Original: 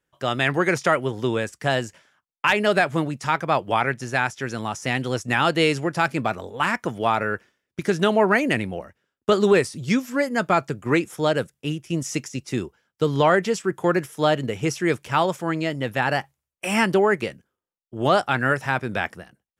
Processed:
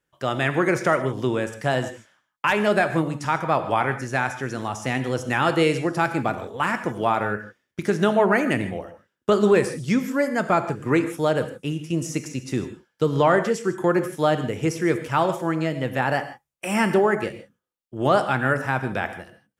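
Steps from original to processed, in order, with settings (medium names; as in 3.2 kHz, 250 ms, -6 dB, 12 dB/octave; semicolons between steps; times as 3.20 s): dynamic bell 3.8 kHz, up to -6 dB, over -39 dBFS, Q 0.73; gated-style reverb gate 180 ms flat, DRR 9 dB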